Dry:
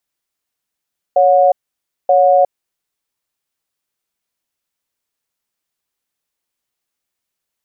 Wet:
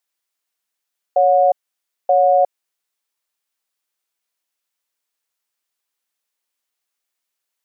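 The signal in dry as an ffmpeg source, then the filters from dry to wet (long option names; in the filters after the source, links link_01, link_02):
-f lavfi -i "aevalsrc='0.316*(sin(2*PI*558*t)+sin(2*PI*726*t))*clip(min(mod(t,0.93),0.36-mod(t,0.93))/0.005,0,1)':duration=1.52:sample_rate=44100"
-af "highpass=frequency=610:poles=1"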